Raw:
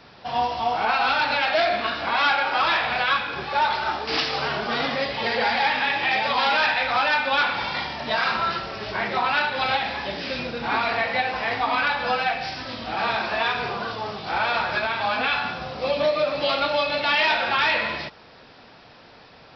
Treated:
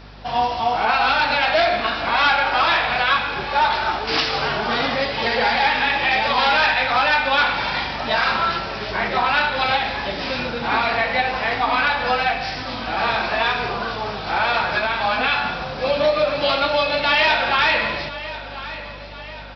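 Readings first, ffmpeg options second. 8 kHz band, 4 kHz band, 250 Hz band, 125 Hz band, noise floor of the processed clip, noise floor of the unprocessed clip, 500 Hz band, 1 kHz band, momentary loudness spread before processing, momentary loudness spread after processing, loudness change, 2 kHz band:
no reading, +3.5 dB, +4.0 dB, +5.5 dB, -34 dBFS, -49 dBFS, +3.5 dB, +3.5 dB, 8 LU, 9 LU, +3.5 dB, +3.5 dB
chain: -af "aeval=exprs='val(0)+0.00562*(sin(2*PI*50*n/s)+sin(2*PI*2*50*n/s)/2+sin(2*PI*3*50*n/s)/3+sin(2*PI*4*50*n/s)/4+sin(2*PI*5*50*n/s)/5)':c=same,aecho=1:1:1039|2078|3117|4156|5195:0.178|0.0925|0.0481|0.025|0.013,volume=1.5"

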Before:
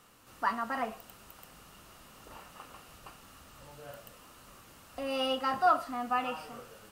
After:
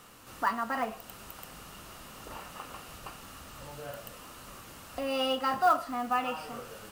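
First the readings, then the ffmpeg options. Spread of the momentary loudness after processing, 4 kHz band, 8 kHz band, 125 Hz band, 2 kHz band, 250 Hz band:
19 LU, +2.0 dB, +5.5 dB, +5.0 dB, +1.5 dB, +2.0 dB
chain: -filter_complex "[0:a]asplit=2[s0][s1];[s1]acompressor=threshold=0.00562:ratio=6,volume=1.19[s2];[s0][s2]amix=inputs=2:normalize=0,acrusher=bits=6:mode=log:mix=0:aa=0.000001"

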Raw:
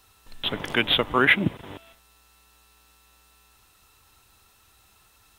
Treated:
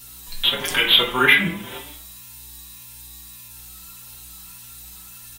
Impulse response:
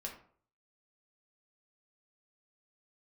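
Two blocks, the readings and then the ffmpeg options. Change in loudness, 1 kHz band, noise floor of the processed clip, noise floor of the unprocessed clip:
+5.5 dB, +3.0 dB, -42 dBFS, -60 dBFS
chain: -filter_complex "[0:a]asplit=2[s0][s1];[s1]acompressor=threshold=0.0251:ratio=6,volume=1.26[s2];[s0][s2]amix=inputs=2:normalize=0,crystalizer=i=8.5:c=0,aeval=exprs='val(0)+0.00631*(sin(2*PI*60*n/s)+sin(2*PI*2*60*n/s)/2+sin(2*PI*3*60*n/s)/3+sin(2*PI*4*60*n/s)/4+sin(2*PI*5*60*n/s)/5)':c=same[s3];[1:a]atrim=start_sample=2205,asetrate=38367,aresample=44100[s4];[s3][s4]afir=irnorm=-1:irlink=0,asplit=2[s5][s6];[s6]adelay=5.2,afreqshift=1.7[s7];[s5][s7]amix=inputs=2:normalize=1,volume=0.841"

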